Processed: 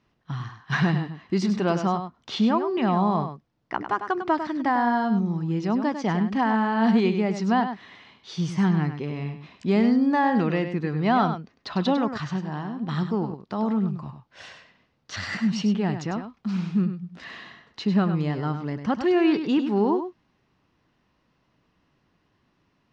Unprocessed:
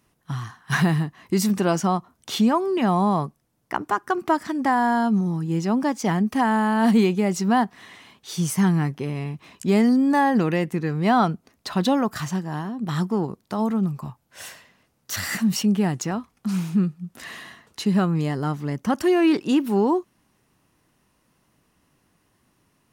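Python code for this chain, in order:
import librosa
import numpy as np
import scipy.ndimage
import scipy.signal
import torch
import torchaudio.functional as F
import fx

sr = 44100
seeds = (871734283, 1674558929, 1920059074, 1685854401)

y = scipy.signal.sosfilt(scipy.signal.butter(4, 4900.0, 'lowpass', fs=sr, output='sos'), x)
y = y + 10.0 ** (-9.0 / 20.0) * np.pad(y, (int(100 * sr / 1000.0), 0))[:len(y)]
y = F.gain(torch.from_numpy(y), -2.5).numpy()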